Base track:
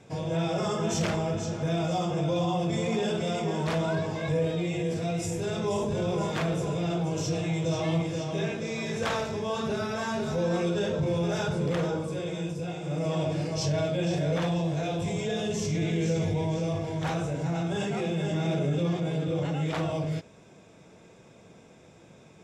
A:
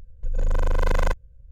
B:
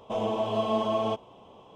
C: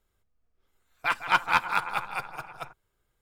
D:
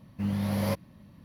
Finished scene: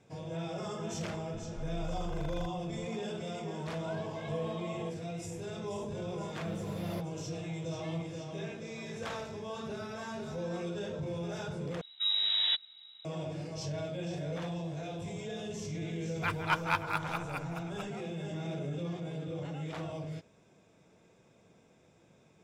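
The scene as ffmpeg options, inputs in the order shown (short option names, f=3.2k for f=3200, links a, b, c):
-filter_complex "[4:a]asplit=2[a][b];[0:a]volume=-10dB[c];[1:a]alimiter=level_in=1.5dB:limit=-24dB:level=0:latency=1:release=71,volume=-1.5dB[d];[b]lowpass=f=3.4k:t=q:w=0.5098,lowpass=f=3.4k:t=q:w=0.6013,lowpass=f=3.4k:t=q:w=0.9,lowpass=f=3.4k:t=q:w=2.563,afreqshift=-4000[e];[c]asplit=2[f][g];[f]atrim=end=11.814[h];[e]atrim=end=1.24,asetpts=PTS-STARTPTS,volume=-1.5dB[i];[g]atrim=start=13.046[j];[d]atrim=end=1.51,asetpts=PTS-STARTPTS,volume=-9.5dB,afade=t=in:d=0.004:c=hsin,afade=t=out:st=1.506:d=0.004:c=hsin,adelay=1340[k];[2:a]atrim=end=1.75,asetpts=PTS-STARTPTS,volume=-15dB,afade=t=in:d=0.004:c=hsin,afade=t=out:st=1.746:d=0.004:c=hsin,adelay=3750[l];[a]atrim=end=1.24,asetpts=PTS-STARTPTS,volume=-13dB,afade=t=in:d=0.004:c=hsin,afade=t=out:st=1.236:d=0.004:c=hsin,adelay=276066S[m];[3:a]atrim=end=3.21,asetpts=PTS-STARTPTS,volume=-7.5dB,afade=t=in:d=0.004:c=hsin,afade=t=out:st=3.206:d=0.004:c=hsin,adelay=15180[n];[h][i]acrossfade=d=0.004:c1=hsin:c2=hsin[o];[o][j]acrossfade=d=0.004:c1=hsin:c2=hsin[p];[p][k][l][m][n]amix=inputs=5:normalize=0"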